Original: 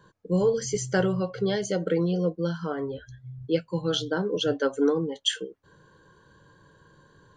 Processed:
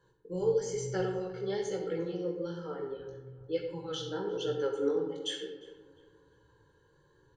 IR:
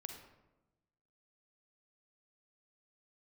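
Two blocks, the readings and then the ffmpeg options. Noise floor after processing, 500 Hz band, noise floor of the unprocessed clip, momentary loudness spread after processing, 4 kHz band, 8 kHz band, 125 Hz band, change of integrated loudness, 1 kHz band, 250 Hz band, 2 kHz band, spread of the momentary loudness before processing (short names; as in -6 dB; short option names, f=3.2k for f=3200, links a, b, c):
-67 dBFS, -5.5 dB, -60 dBFS, 12 LU, -10.0 dB, -9.5 dB, -11.5 dB, -7.5 dB, -7.5 dB, -10.5 dB, -12.0 dB, 10 LU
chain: -filter_complex "[0:a]aecho=1:1:2.3:0.63,flanger=delay=15.5:depth=6.8:speed=1.1,asplit=2[a][b];[b]adelay=352,lowpass=f=1.9k:p=1,volume=-17dB,asplit=2[c][d];[d]adelay=352,lowpass=f=1.9k:p=1,volume=0.42,asplit=2[e][f];[f]adelay=352,lowpass=f=1.9k:p=1,volume=0.42,asplit=2[g][h];[h]adelay=352,lowpass=f=1.9k:p=1,volume=0.42[i];[a][c][e][g][i]amix=inputs=5:normalize=0[j];[1:a]atrim=start_sample=2205[k];[j][k]afir=irnorm=-1:irlink=0,volume=-3.5dB"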